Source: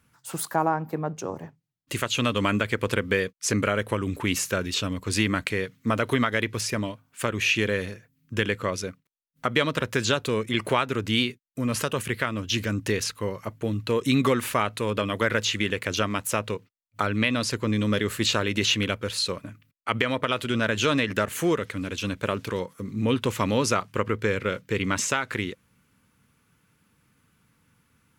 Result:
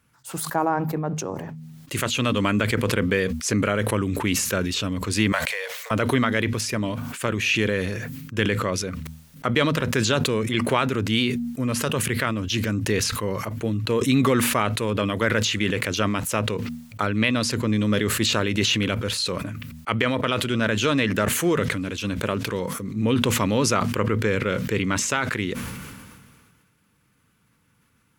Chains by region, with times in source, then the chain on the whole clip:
5.32–5.91 s: companding laws mixed up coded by mu + steep high-pass 500 Hz 72 dB/octave + peaking EQ 1.3 kHz -5 dB 0.31 oct
whole clip: de-hum 79.3 Hz, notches 3; dynamic bell 190 Hz, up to +3 dB, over -33 dBFS, Q 0.71; decay stretcher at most 31 dB/s

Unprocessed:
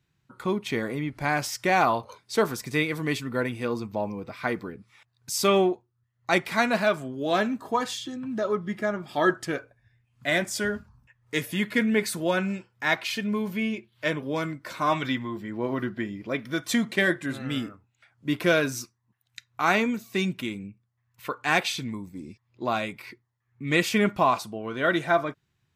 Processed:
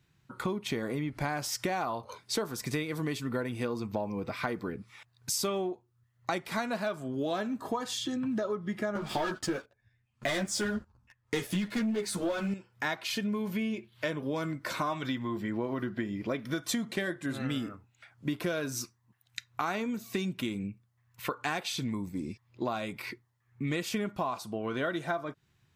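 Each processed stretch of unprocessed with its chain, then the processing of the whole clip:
8.95–12.54 s: low-pass 9.8 kHz + waveshaping leveller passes 3 + three-phase chorus
whole clip: dynamic bell 2.2 kHz, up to -5 dB, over -41 dBFS, Q 1.6; compression 10:1, threshold -33 dBFS; trim +4 dB

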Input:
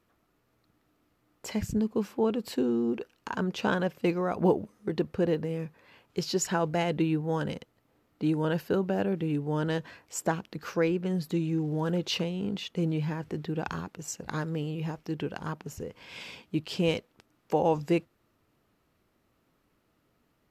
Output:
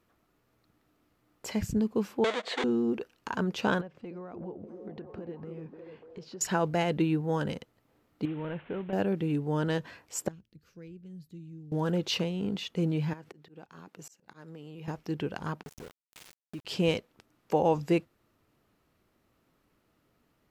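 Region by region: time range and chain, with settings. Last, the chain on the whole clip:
2.24–2.64 s: square wave that keeps the level + compression 2:1, threshold -34 dBFS + cabinet simulation 440–6900 Hz, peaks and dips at 470 Hz +9 dB, 690 Hz +6 dB, 1.3 kHz +5 dB, 2 kHz +9 dB, 3.5 kHz +9 dB, 5.3 kHz -7 dB
3.81–6.41 s: compression, threshold -39 dBFS + tape spacing loss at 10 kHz 21 dB + repeats whose band climbs or falls 295 ms, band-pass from 320 Hz, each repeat 0.7 oct, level -2 dB
8.25–8.93 s: CVSD coder 16 kbps + compression 2:1, threshold -38 dBFS
10.28–11.72 s: amplifier tone stack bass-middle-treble 10-0-1 + de-hum 56.11 Hz, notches 2
13.13–14.88 s: high-pass 170 Hz + slow attack 489 ms + compression, threshold -41 dBFS
15.63–16.65 s: small samples zeroed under -36.5 dBFS + compression 2:1, threshold -45 dBFS
whole clip: none

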